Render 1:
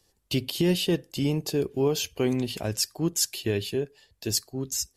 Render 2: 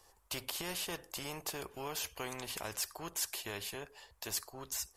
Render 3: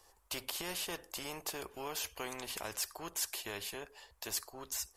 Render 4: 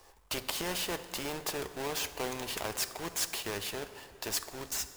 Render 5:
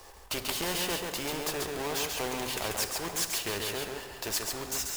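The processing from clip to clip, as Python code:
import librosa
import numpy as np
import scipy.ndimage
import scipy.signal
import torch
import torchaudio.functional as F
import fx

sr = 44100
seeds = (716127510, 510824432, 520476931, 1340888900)

y1 = fx.graphic_eq_10(x, sr, hz=(125, 250, 1000, 4000), db=(-9, -10, 11, -5))
y1 = fx.spectral_comp(y1, sr, ratio=2.0)
y1 = y1 * librosa.db_to_amplitude(-5.0)
y2 = fx.peak_eq(y1, sr, hz=130.0, db=-6.5, octaves=0.85)
y3 = fx.halfwave_hold(y2, sr)
y3 = fx.rev_plate(y3, sr, seeds[0], rt60_s=3.5, hf_ratio=0.55, predelay_ms=0, drr_db=11.5)
y3 = y3 * librosa.db_to_amplitude(1.0)
y4 = fx.law_mismatch(y3, sr, coded='mu')
y4 = y4 + 10.0 ** (-4.0 / 20.0) * np.pad(y4, (int(138 * sr / 1000.0), 0))[:len(y4)]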